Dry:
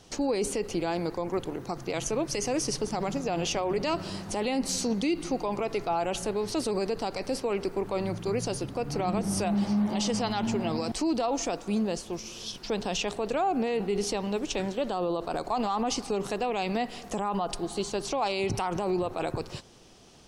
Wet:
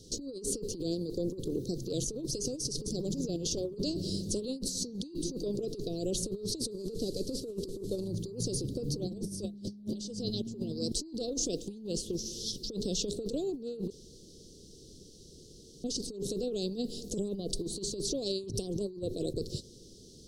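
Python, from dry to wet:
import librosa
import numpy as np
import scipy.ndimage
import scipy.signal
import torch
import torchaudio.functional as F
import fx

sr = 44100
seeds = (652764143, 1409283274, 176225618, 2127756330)

y = fx.delta_mod(x, sr, bps=64000, step_db=-45.0, at=(6.71, 8.08))
y = fx.band_shelf(y, sr, hz=2400.0, db=8.5, octaves=1.1, at=(11.47, 12.15))
y = fx.edit(y, sr, fx.room_tone_fill(start_s=13.9, length_s=1.94), tone=tone)
y = scipy.signal.sosfilt(scipy.signal.ellip(3, 1.0, 40, [460.0, 4000.0], 'bandstop', fs=sr, output='sos'), y)
y = fx.over_compress(y, sr, threshold_db=-34.0, ratio=-0.5)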